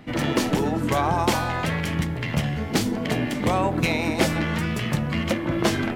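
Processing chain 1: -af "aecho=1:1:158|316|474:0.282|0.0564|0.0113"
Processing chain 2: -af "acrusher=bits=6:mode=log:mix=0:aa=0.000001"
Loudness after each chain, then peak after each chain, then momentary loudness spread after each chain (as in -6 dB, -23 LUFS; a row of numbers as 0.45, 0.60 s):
-23.5, -24.0 LUFS; -6.5, -7.0 dBFS; 4, 3 LU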